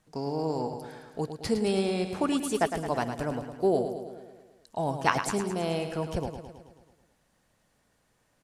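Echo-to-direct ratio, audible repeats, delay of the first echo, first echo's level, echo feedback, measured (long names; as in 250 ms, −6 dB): −6.5 dB, 6, 108 ms, −8.5 dB, 60%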